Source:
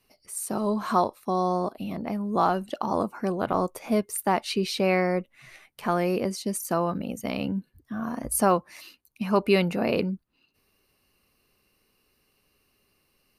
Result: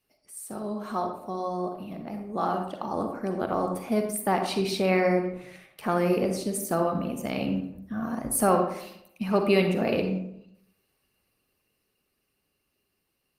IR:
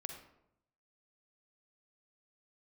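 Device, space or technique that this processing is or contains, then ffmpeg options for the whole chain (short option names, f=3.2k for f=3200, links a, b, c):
speakerphone in a meeting room: -filter_complex "[0:a]highpass=f=41:p=1,bandreject=f=1k:w=12,asplit=3[a][b][c];[a]afade=t=out:st=7.58:d=0.02[d];[b]equalizer=f=66:t=o:w=1.8:g=4.5,afade=t=in:st=7.58:d=0.02,afade=t=out:st=8.09:d=0.02[e];[c]afade=t=in:st=8.09:d=0.02[f];[d][e][f]amix=inputs=3:normalize=0[g];[1:a]atrim=start_sample=2205[h];[g][h]afir=irnorm=-1:irlink=0,dynaudnorm=f=390:g=17:m=7.5dB,volume=-3.5dB" -ar 48000 -c:a libopus -b:a 24k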